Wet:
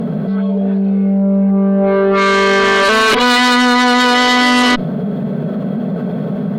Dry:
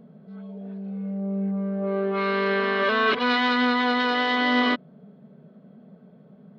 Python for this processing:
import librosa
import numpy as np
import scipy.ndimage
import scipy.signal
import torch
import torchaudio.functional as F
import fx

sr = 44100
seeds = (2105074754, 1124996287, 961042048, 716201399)

y = fx.dynamic_eq(x, sr, hz=4700.0, q=1.6, threshold_db=-44.0, ratio=4.0, max_db=6)
y = fx.cheby_harmonics(y, sr, harmonics=(5, 6, 8), levels_db=(-14, -19, -15), full_scale_db=-9.0)
y = fx.env_flatten(y, sr, amount_pct=70)
y = F.gain(torch.from_numpy(y), 6.0).numpy()